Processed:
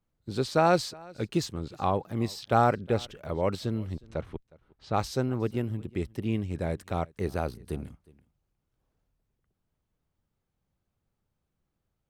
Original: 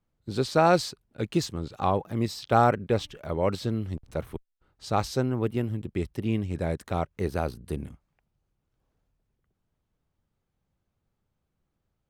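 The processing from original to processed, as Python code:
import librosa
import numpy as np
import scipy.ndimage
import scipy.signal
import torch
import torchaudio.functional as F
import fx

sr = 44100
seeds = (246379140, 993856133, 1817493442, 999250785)

y = fx.lowpass(x, sr, hz=fx.line((3.96, 6700.0), (4.93, 3100.0)), slope=12, at=(3.96, 4.93), fade=0.02)
y = y + 10.0 ** (-24.0 / 20.0) * np.pad(y, (int(362 * sr / 1000.0), 0))[:len(y)]
y = y * 10.0 ** (-2.0 / 20.0)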